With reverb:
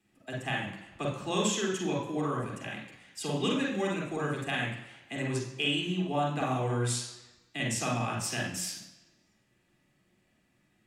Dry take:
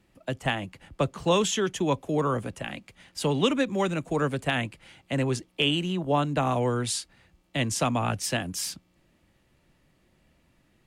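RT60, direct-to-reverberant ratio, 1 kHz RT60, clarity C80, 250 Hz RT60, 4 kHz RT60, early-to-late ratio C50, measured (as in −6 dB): 1.1 s, −2.0 dB, 1.1 s, 7.5 dB, 0.95 s, 1.0 s, 3.0 dB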